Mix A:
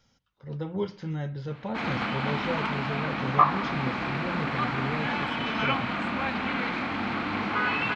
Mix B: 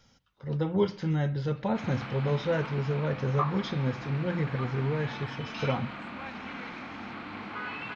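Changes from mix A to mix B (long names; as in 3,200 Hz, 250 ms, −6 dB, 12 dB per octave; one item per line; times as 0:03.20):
speech +4.5 dB
background −10.5 dB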